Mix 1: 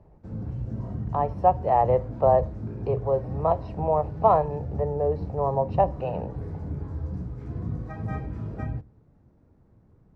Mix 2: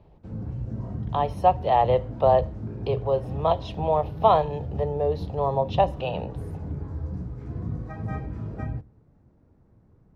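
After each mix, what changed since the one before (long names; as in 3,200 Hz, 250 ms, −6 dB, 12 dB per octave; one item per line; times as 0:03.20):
speech: remove moving average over 13 samples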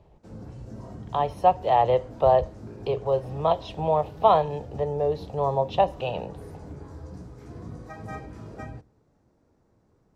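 background: add bass and treble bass −10 dB, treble +13 dB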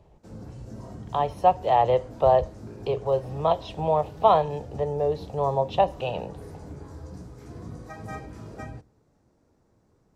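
background: add high-shelf EQ 5,100 Hz +6.5 dB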